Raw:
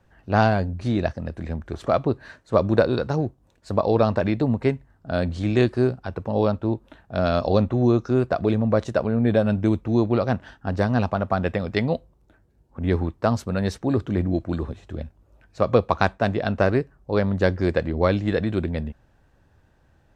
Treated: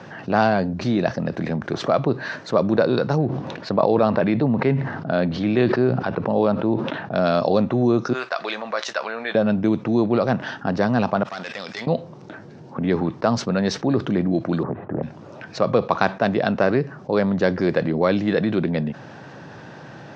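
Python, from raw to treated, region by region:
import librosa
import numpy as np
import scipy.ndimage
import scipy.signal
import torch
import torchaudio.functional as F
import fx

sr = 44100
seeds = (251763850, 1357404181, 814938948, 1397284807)

y = fx.chain(x, sr, fx.lowpass(hz=3800.0, slope=12),
    fx.sustainer(db_per_s=83.0), at=(3.18, 7.16))
y = fx.chain(y, sr, fx.highpass(hz=1300.0, slope=12),
    fx.doubler(ms=15.0, db=-13.0), at=(8.13, 9.35))
y = fx.chain(y, sr, fx.differentiator(),
    fx.tube_stage(drive_db=41.0, bias=0.6),
    fx.sustainer(db_per_s=58.0), at=(11.23, 11.87))
y = fx.chain(y, sr, fx.lowpass(hz=1400.0, slope=24),
    fx.doppler_dist(depth_ms=0.45), at=(14.63, 15.03))
y = scipy.signal.sosfilt(scipy.signal.ellip(3, 1.0, 40, [140.0, 5700.0], 'bandpass', fs=sr, output='sos'), y)
y = fx.env_flatten(y, sr, amount_pct=50)
y = y * 10.0 ** (-1.0 / 20.0)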